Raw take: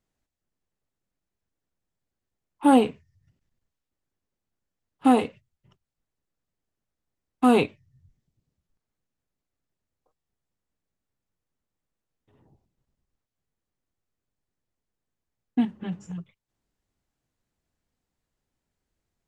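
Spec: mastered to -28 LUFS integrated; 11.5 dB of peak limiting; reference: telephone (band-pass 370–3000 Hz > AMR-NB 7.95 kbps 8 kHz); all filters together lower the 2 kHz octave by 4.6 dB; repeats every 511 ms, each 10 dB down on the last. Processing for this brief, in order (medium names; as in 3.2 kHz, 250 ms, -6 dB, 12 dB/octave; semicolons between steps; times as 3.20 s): peaking EQ 2 kHz -5 dB; peak limiter -18 dBFS; band-pass 370–3000 Hz; feedback delay 511 ms, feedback 32%, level -10 dB; trim +10 dB; AMR-NB 7.95 kbps 8 kHz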